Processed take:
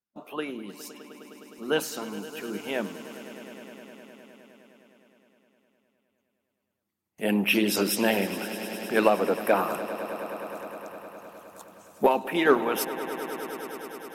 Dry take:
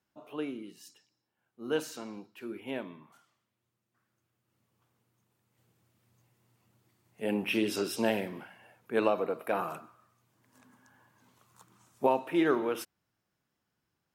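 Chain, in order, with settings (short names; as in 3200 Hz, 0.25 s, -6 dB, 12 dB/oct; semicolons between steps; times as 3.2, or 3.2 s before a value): gate with hold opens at -57 dBFS; thirty-one-band EQ 125 Hz -12 dB, 200 Hz +12 dB, 12500 Hz +7 dB; harmonic-percussive split harmonic -12 dB; in parallel at -8 dB: hard clip -25 dBFS, distortion -14 dB; on the sum: swelling echo 0.103 s, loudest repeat 5, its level -17.5 dB; gain +7.5 dB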